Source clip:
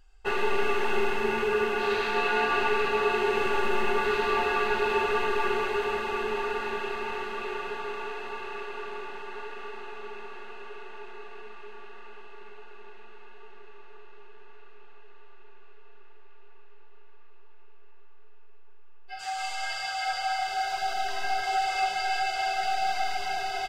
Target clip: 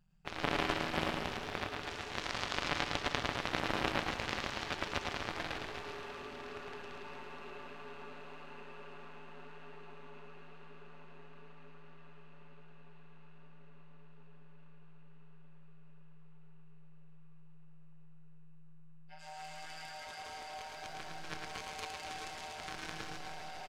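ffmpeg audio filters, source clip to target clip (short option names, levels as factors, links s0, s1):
-af "tremolo=f=160:d=1,aeval=exprs='0.211*(cos(1*acos(clip(val(0)/0.211,-1,1)))-cos(1*PI/2))+0.0841*(cos(3*acos(clip(val(0)/0.211,-1,1)))-cos(3*PI/2))':c=same,aecho=1:1:110|242|400.4|590.5|818.6:0.631|0.398|0.251|0.158|0.1,volume=1.41"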